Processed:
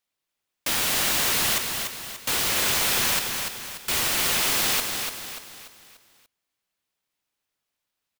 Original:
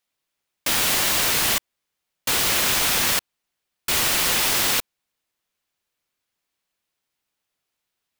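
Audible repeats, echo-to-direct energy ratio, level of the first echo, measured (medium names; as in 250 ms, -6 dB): 5, -4.5 dB, -5.5 dB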